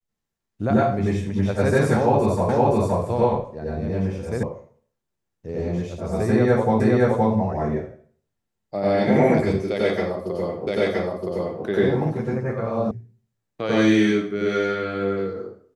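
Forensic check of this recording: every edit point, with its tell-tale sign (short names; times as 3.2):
2.49 repeat of the last 0.52 s
4.43 sound cut off
6.8 repeat of the last 0.52 s
10.67 repeat of the last 0.97 s
12.91 sound cut off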